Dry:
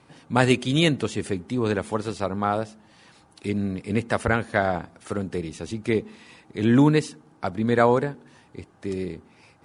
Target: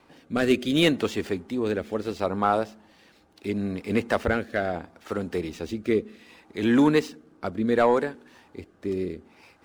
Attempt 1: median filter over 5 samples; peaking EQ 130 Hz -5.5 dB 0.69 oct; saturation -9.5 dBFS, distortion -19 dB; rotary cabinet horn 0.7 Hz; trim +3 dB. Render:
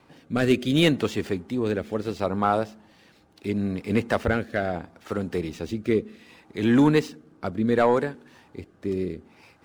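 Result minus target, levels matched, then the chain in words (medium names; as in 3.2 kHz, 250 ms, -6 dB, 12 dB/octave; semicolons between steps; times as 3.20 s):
125 Hz band +4.0 dB
median filter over 5 samples; peaking EQ 130 Hz -14 dB 0.69 oct; saturation -9.5 dBFS, distortion -19 dB; rotary cabinet horn 0.7 Hz; trim +3 dB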